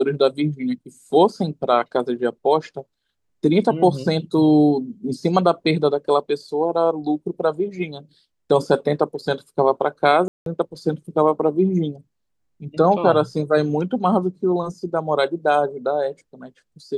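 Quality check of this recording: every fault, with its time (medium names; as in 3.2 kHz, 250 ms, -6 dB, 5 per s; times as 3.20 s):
10.28–10.46 s: dropout 182 ms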